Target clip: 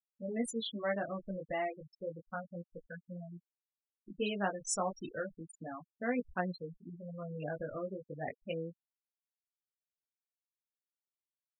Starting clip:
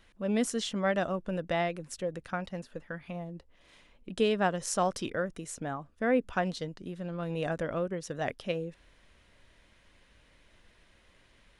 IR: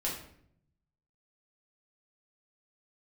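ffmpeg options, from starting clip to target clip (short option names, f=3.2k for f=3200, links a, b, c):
-af "flanger=delay=16.5:depth=4:speed=0.32,afftfilt=real='re*gte(hypot(re,im),0.0282)':imag='im*gte(hypot(re,im),0.0282)':win_size=1024:overlap=0.75,aemphasis=mode=production:type=75kf,volume=-4dB"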